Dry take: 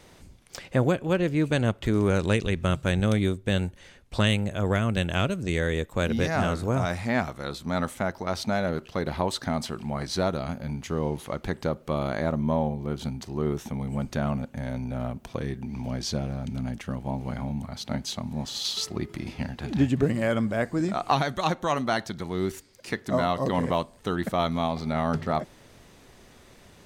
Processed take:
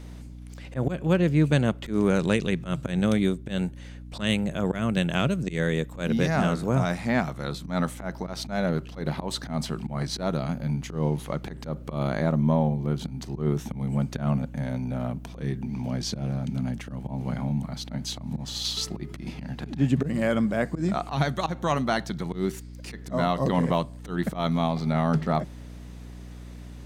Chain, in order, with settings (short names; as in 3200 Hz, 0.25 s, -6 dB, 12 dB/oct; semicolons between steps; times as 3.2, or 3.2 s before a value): resonant low shelf 110 Hz -9 dB, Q 3; auto swell 0.124 s; hum 60 Hz, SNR 14 dB